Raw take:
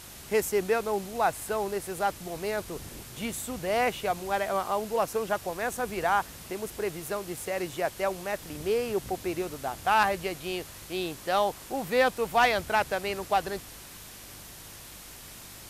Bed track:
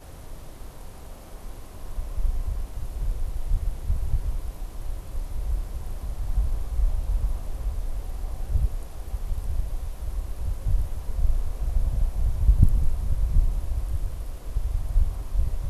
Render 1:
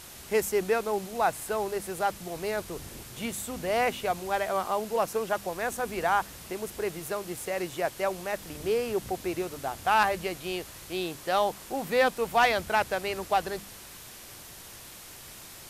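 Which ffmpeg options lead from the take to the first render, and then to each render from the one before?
-af "bandreject=f=50:t=h:w=4,bandreject=f=100:t=h:w=4,bandreject=f=150:t=h:w=4,bandreject=f=200:t=h:w=4,bandreject=f=250:t=h:w=4,bandreject=f=300:t=h:w=4"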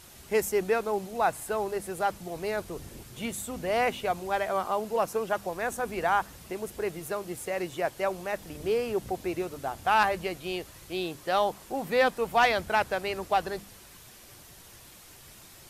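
-af "afftdn=nr=6:nf=-46"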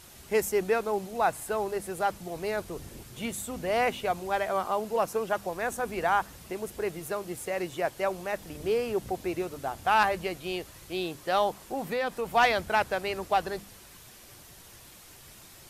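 -filter_complex "[0:a]asettb=1/sr,asplit=3[a][b][c];[a]atrim=end=11.574[d];[b]atrim=start=11.57:end=12.32,asetpts=PTS-STARTPTS,afade=t=in:d=0.004:c=qsin,afade=t=out:st=0.746:d=0.004:c=qsin,acompressor=threshold=-26dB:ratio=4:attack=3.2:release=140:knee=1:detection=peak[e];[c]atrim=start=12.316[f];[d][e]acrossfade=d=0.004:c1=hsin:c2=qsin[g];[g][f]acrossfade=d=0.004:c1=qsin:c2=hsin"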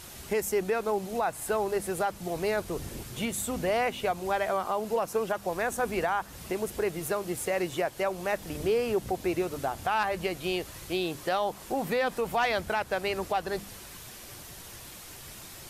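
-filter_complex "[0:a]asplit=2[a][b];[b]acompressor=threshold=-35dB:ratio=6,volume=-1dB[c];[a][c]amix=inputs=2:normalize=0,alimiter=limit=-18.5dB:level=0:latency=1:release=191"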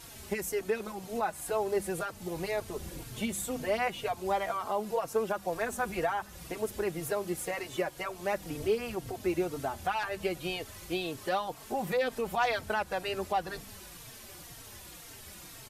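-filter_complex "[0:a]asplit=2[a][b];[b]adelay=3.8,afreqshift=-2[c];[a][c]amix=inputs=2:normalize=1"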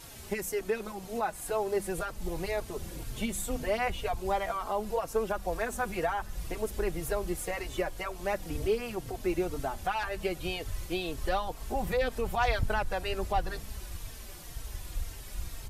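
-filter_complex "[1:a]volume=-14dB[a];[0:a][a]amix=inputs=2:normalize=0"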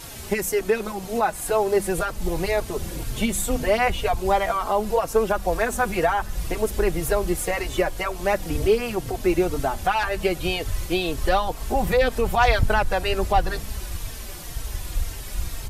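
-af "volume=9.5dB"

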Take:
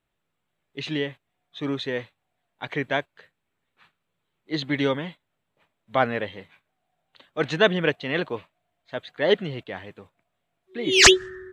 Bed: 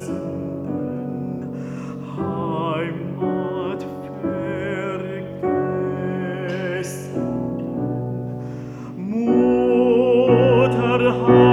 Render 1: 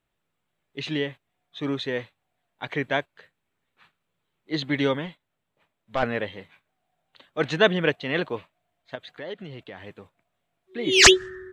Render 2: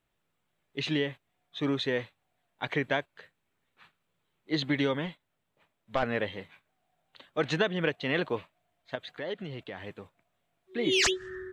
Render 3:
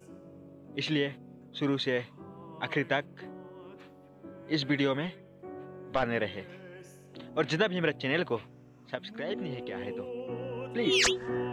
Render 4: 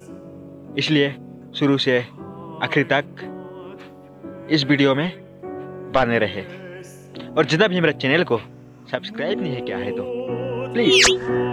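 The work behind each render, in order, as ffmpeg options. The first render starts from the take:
-filter_complex "[0:a]asettb=1/sr,asplit=3[a][b][c];[a]atrim=end=5.064[d];[b]atrim=start=5.06:end=6.03,asetpts=PTS-STARTPTS,afade=t=in:d=0.004:c=qsin,afade=t=out:st=0.966:d=0.004:c=qsin,aeval=exprs='(tanh(7.08*val(0)+0.5)-tanh(0.5))/7.08':c=same[e];[c]atrim=start=6.026[f];[d][e]acrossfade=d=0.004:c1=hsin:c2=qsin[g];[g][f]acrossfade=d=0.004:c1=qsin:c2=hsin,asettb=1/sr,asplit=3[h][i][j];[h]atrim=end=8.954[k];[i]atrim=start=8.95:end=9.86,asetpts=PTS-STARTPTS,afade=t=in:d=0.004:c=qsin,afade=t=out:st=0.906:d=0.004:c=qsin,acompressor=threshold=-37dB:ratio=3:attack=3.2:release=140:knee=1:detection=peak[l];[j]atrim=start=9.856[m];[k][l]acrossfade=d=0.004:c1=hsin:c2=qsin[n];[n][m]acrossfade=d=0.004:c1=qsin:c2=hsin"
-af "acompressor=threshold=-23dB:ratio=10"
-filter_complex "[1:a]volume=-23.5dB[a];[0:a][a]amix=inputs=2:normalize=0"
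-af "volume=11.5dB,alimiter=limit=-3dB:level=0:latency=1"

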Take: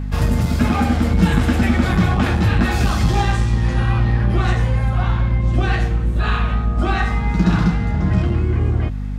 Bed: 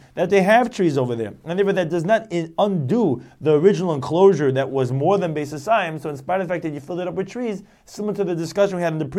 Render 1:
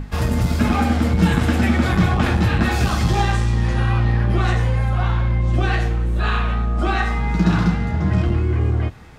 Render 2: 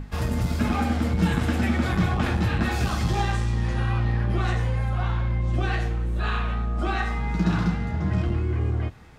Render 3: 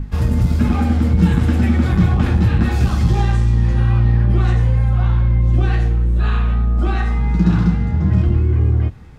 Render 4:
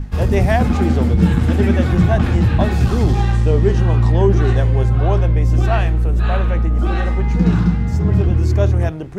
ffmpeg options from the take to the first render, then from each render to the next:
-af "bandreject=f=50:t=h:w=6,bandreject=f=100:t=h:w=6,bandreject=f=150:t=h:w=6,bandreject=f=200:t=h:w=6,bandreject=f=250:t=h:w=6"
-af "volume=-6dB"
-af "lowshelf=f=320:g=11,bandreject=f=660:w=14"
-filter_complex "[1:a]volume=-4dB[a];[0:a][a]amix=inputs=2:normalize=0"

